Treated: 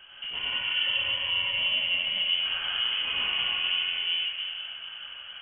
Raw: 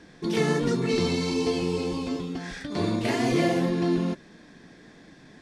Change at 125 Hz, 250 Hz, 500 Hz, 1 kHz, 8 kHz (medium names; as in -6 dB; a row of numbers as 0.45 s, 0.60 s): under -20 dB, under -30 dB, -23.0 dB, -8.0 dB, under -40 dB